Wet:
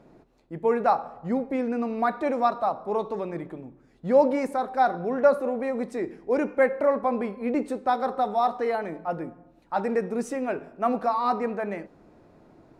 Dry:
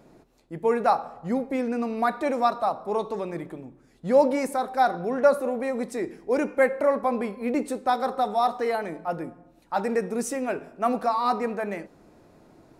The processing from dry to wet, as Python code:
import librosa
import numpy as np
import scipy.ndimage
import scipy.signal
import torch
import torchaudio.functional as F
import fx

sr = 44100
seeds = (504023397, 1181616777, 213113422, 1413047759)

y = fx.lowpass(x, sr, hz=2600.0, slope=6)